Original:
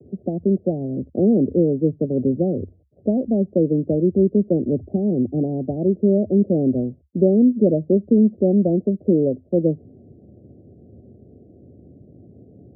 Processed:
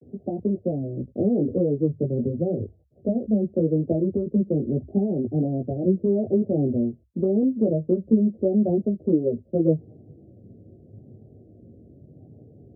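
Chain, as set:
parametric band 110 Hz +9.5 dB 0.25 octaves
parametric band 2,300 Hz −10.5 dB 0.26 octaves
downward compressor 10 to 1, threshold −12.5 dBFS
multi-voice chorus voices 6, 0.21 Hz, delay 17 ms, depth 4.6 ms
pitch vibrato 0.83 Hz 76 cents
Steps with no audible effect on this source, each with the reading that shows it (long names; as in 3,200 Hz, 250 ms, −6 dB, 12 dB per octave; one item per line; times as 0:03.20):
parametric band 2,300 Hz: nothing at its input above 720 Hz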